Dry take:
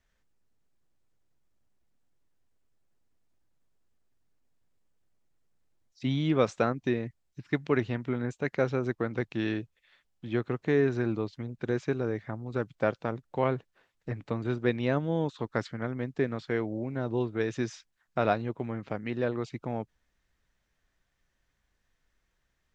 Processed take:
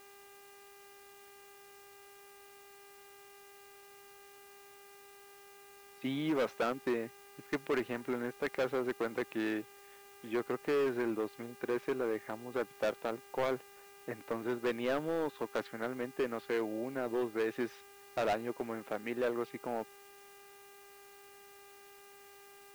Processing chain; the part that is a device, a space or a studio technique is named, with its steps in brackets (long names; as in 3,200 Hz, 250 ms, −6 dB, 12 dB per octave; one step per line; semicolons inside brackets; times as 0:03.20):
aircraft radio (band-pass filter 330–2,600 Hz; hard clipping −27.5 dBFS, distortion −9 dB; hum with harmonics 400 Hz, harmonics 7, −58 dBFS −4 dB per octave; white noise bed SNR 23 dB)